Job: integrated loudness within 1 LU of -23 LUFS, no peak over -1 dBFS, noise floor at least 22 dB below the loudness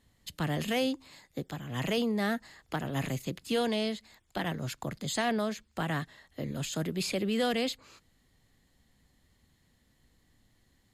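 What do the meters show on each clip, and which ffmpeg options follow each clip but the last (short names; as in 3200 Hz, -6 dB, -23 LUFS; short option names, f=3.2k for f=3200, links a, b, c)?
loudness -33.0 LUFS; peak -20.5 dBFS; loudness target -23.0 LUFS
-> -af "volume=10dB"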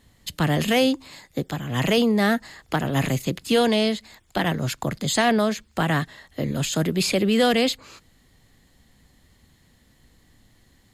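loudness -23.0 LUFS; peak -10.5 dBFS; noise floor -60 dBFS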